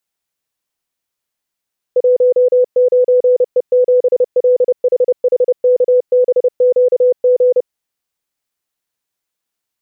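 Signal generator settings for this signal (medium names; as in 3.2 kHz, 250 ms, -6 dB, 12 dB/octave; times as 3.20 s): Morse "19E7LHHKBQG" 30 wpm 499 Hz -7 dBFS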